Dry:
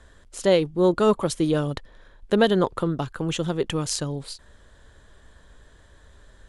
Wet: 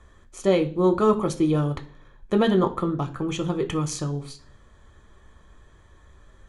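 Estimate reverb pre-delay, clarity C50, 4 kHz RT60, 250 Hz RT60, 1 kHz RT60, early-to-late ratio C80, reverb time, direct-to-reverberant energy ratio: 3 ms, 16.0 dB, 0.45 s, 0.65 s, 0.40 s, 21.0 dB, 0.45 s, 5.0 dB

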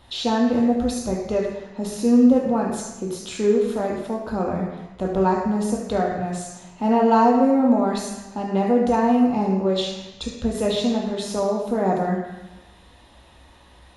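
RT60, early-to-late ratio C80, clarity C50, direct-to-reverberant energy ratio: 1.1 s, 5.0 dB, 2.5 dB, −2.0 dB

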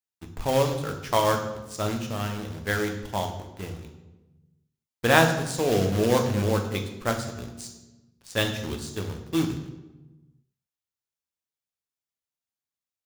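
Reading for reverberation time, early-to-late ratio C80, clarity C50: 1.1 s, 10.5 dB, 8.5 dB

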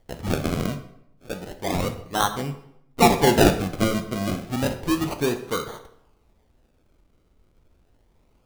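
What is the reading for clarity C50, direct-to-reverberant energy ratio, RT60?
11.0 dB, 7.0 dB, 0.75 s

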